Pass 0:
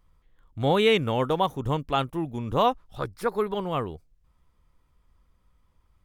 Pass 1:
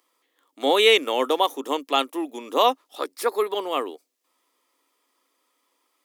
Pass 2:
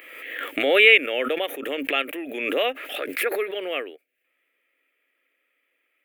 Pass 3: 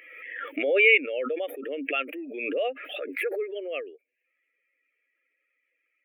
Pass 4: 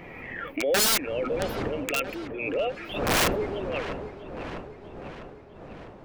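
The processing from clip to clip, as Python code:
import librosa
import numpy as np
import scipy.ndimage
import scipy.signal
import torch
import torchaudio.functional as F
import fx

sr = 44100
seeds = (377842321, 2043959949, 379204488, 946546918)

y1 = scipy.signal.sosfilt(scipy.signal.cheby1(5, 1.0, 270.0, 'highpass', fs=sr, output='sos'), x)
y1 = fx.high_shelf(y1, sr, hz=2800.0, db=10.0)
y1 = fx.notch(y1, sr, hz=1500.0, q=9.6)
y1 = y1 * 10.0 ** (3.0 / 20.0)
y2 = fx.curve_eq(y1, sr, hz=(140.0, 200.0, 610.0, 1000.0, 1500.0, 2500.0, 3900.0, 5500.0, 14000.0), db=(0, -11, -2, -23, 3, 8, -15, -26, -7))
y2 = fx.pre_swell(y2, sr, db_per_s=41.0)
y2 = y2 * 10.0 ** (1.0 / 20.0)
y3 = fx.spec_expand(y2, sr, power=1.9)
y3 = y3 * 10.0 ** (-4.0 / 20.0)
y4 = fx.dmg_wind(y3, sr, seeds[0], corner_hz=560.0, level_db=-33.0)
y4 = (np.mod(10.0 ** (17.0 / 20.0) * y4 + 1.0, 2.0) - 1.0) / 10.0 ** (17.0 / 20.0)
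y4 = fx.echo_wet_lowpass(y4, sr, ms=650, feedback_pct=54, hz=2600.0, wet_db=-11)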